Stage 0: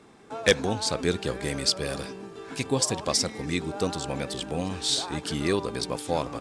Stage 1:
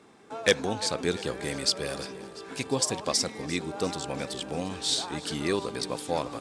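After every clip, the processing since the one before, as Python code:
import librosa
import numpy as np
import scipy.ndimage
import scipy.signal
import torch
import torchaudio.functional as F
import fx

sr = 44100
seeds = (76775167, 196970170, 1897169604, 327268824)

y = fx.low_shelf(x, sr, hz=94.0, db=-10.5)
y = fx.echo_feedback(y, sr, ms=346, feedback_pct=60, wet_db=-18.0)
y = y * 10.0 ** (-1.5 / 20.0)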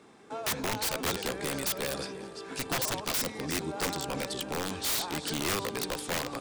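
y = (np.mod(10.0 ** (23.5 / 20.0) * x + 1.0, 2.0) - 1.0) / 10.0 ** (23.5 / 20.0)
y = fx.hum_notches(y, sr, base_hz=50, count=2)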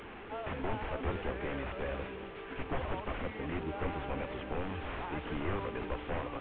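y = fx.delta_mod(x, sr, bps=16000, step_db=-38.5)
y = fx.low_shelf_res(y, sr, hz=100.0, db=8.5, q=1.5)
y = y * 10.0 ** (-2.5 / 20.0)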